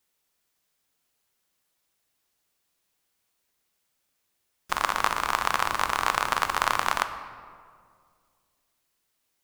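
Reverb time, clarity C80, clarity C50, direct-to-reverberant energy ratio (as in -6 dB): 2.1 s, 11.5 dB, 10.5 dB, 8.5 dB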